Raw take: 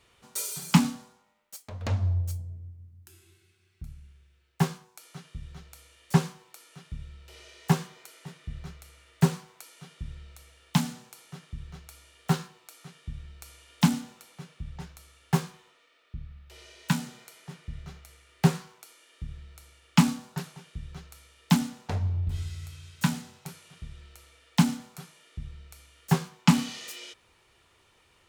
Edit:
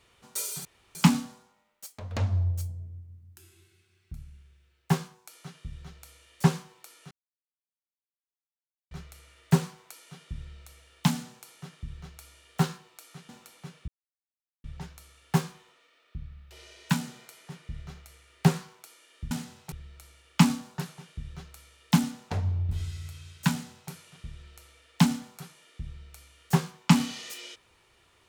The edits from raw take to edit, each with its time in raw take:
0:00.65: splice in room tone 0.30 s
0:06.81–0:08.61: silence
0:12.99–0:14.04: remove
0:14.63: splice in silence 0.76 s
0:23.08–0:23.49: duplicate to 0:19.30

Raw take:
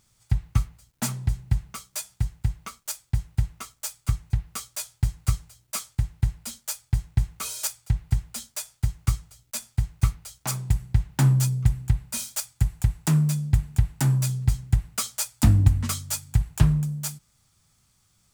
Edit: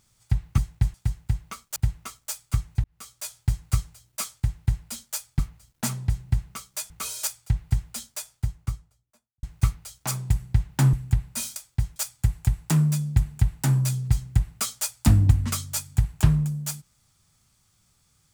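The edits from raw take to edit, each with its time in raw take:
0:00.58–0:02.09: swap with 0:06.94–0:07.30
0:02.91–0:03.31: move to 0:12.33
0:04.39–0:04.93: fade in
0:08.39–0:09.83: fade out and dull
0:11.33–0:11.70: remove

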